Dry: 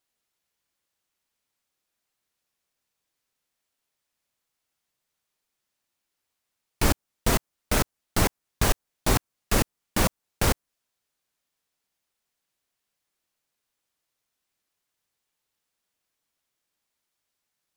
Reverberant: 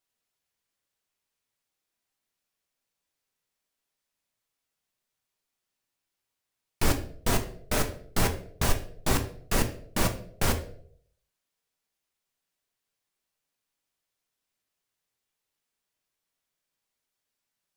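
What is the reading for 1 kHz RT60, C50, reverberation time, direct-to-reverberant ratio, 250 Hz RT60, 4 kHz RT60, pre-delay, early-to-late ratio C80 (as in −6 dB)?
0.55 s, 11.5 dB, 0.65 s, 5.0 dB, 0.60 s, 0.40 s, 5 ms, 15.5 dB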